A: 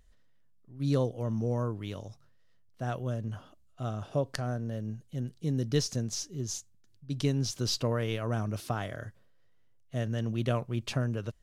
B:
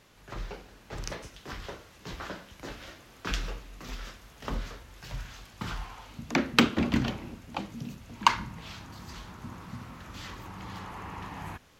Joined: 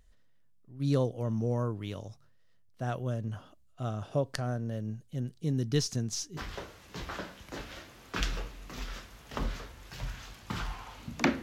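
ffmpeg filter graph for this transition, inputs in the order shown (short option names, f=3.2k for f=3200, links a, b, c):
-filter_complex "[0:a]asettb=1/sr,asplit=3[a][b][c];[a]atrim=end=5.534[d];[b]atrim=start=5.53:end=6.37,asetpts=PTS-STARTPTS,afade=t=in:d=0.004:c=qsin,afade=t=out:st=0.836:d=0.004:c=qsin,equalizer=f=550:t=o:w=0.21:g=-12.5[e];[c]atrim=start=6.366[f];[d][e]acrossfade=d=0.004:c1=hsin:c2=qsin[g];[g][f]acrossfade=d=0.004:c1=qsin:c2=hsin,apad=whole_dur=11.42,atrim=end=11.42,atrim=end=6.372[h];[1:a]atrim=start=1.478:end=6.53[i];[h][i]acrossfade=d=0.004:c1=hsin:c2=hsin"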